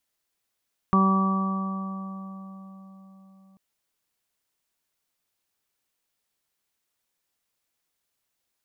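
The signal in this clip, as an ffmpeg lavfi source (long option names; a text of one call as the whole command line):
ffmpeg -f lavfi -i "aevalsrc='0.126*pow(10,-3*t/4.49)*sin(2*PI*192*t)+0.0376*pow(10,-3*t/2.35)*sin(2*PI*384*t)+0.0168*pow(10,-3*t/4.58)*sin(2*PI*576*t)+0.0251*pow(10,-3*t/4.02)*sin(2*PI*768*t)+0.0316*pow(10,-3*t/2.99)*sin(2*PI*960*t)+0.112*pow(10,-3*t/3.15)*sin(2*PI*1152*t)':duration=2.64:sample_rate=44100" out.wav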